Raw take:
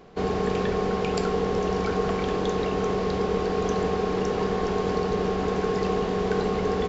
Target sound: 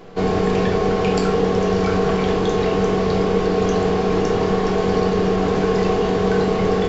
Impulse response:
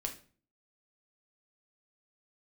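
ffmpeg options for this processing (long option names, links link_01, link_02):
-filter_complex "[0:a]asplit=2[link_01][link_02];[link_02]alimiter=limit=-22.5dB:level=0:latency=1,volume=2.5dB[link_03];[link_01][link_03]amix=inputs=2:normalize=0,flanger=delay=9.9:depth=9:regen=-80:speed=0.58:shape=sinusoidal[link_04];[1:a]atrim=start_sample=2205,atrim=end_sample=3087[link_05];[link_04][link_05]afir=irnorm=-1:irlink=0,volume=6dB"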